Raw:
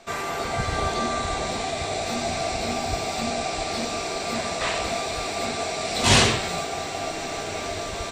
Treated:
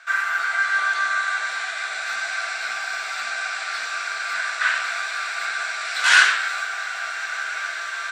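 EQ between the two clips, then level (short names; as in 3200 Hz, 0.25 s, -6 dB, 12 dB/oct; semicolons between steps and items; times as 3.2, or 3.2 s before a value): resonant high-pass 1500 Hz, resonance Q 12; high shelf 7700 Hz -4.5 dB; -1.5 dB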